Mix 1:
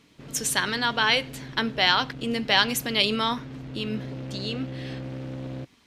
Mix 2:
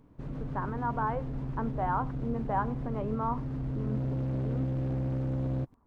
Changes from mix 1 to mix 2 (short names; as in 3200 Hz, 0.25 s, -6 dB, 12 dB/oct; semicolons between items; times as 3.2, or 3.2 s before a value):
speech: add ladder low-pass 1300 Hz, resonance 40%; master: remove weighting filter D